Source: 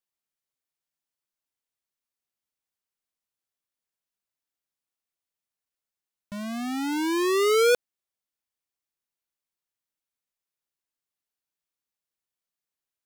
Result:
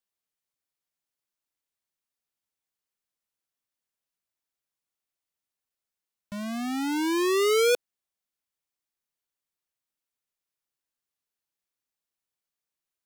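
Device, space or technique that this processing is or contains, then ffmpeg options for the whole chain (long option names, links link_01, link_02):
one-band saturation: -filter_complex "[0:a]acrossover=split=460|2400[link_01][link_02][link_03];[link_02]asoftclip=type=tanh:threshold=-25dB[link_04];[link_01][link_04][link_03]amix=inputs=3:normalize=0"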